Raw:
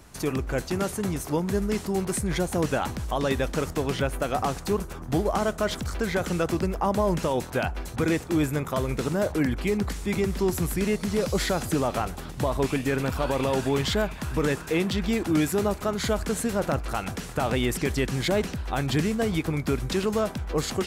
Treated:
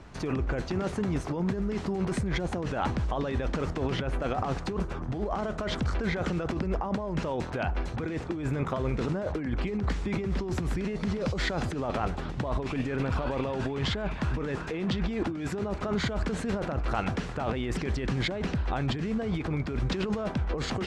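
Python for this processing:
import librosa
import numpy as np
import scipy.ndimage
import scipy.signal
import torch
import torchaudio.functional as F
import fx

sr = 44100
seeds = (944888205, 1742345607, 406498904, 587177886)

y = fx.high_shelf(x, sr, hz=5000.0, db=-8.0)
y = fx.over_compress(y, sr, threshold_db=-29.0, ratio=-1.0)
y = fx.air_absorb(y, sr, metres=98.0)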